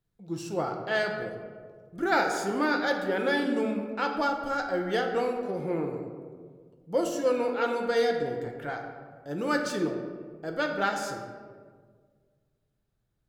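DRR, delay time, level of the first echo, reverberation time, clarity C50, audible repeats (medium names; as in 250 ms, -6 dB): 2.0 dB, no echo, no echo, 1.7 s, 5.0 dB, no echo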